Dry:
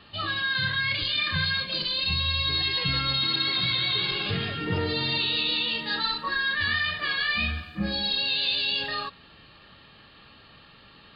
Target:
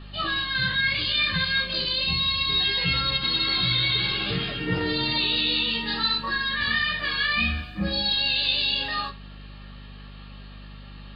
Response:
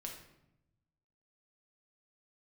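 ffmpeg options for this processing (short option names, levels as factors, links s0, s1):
-filter_complex "[0:a]flanger=delay=15.5:depth=2.1:speed=0.23,aeval=exprs='val(0)+0.00562*(sin(2*PI*50*n/s)+sin(2*PI*2*50*n/s)/2+sin(2*PI*3*50*n/s)/3+sin(2*PI*4*50*n/s)/4+sin(2*PI*5*50*n/s)/5)':c=same,asplit=2[s0][s1];[1:a]atrim=start_sample=2205,atrim=end_sample=3528[s2];[s1][s2]afir=irnorm=-1:irlink=0,volume=0.891[s3];[s0][s3]amix=inputs=2:normalize=0,volume=1.19"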